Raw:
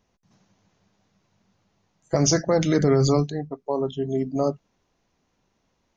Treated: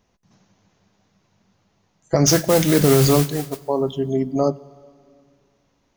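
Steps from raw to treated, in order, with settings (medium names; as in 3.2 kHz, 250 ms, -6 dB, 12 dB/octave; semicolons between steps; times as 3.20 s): 2.26–3.66 s: modulation noise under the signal 11 dB; on a send: reverberation RT60 2.2 s, pre-delay 67 ms, DRR 21.5 dB; on the sum: trim +4 dB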